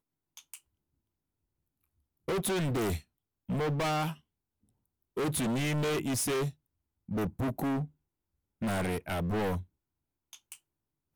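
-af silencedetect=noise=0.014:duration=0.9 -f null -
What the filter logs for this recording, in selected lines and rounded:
silence_start: 0.55
silence_end: 2.28 | silence_duration: 1.73
silence_start: 4.13
silence_end: 5.17 | silence_duration: 1.04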